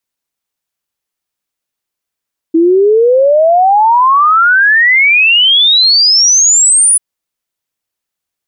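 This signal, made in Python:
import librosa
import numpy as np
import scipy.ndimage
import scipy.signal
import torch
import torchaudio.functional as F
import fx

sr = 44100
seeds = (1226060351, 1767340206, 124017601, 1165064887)

y = fx.ess(sr, length_s=4.44, from_hz=320.0, to_hz=10000.0, level_db=-4.5)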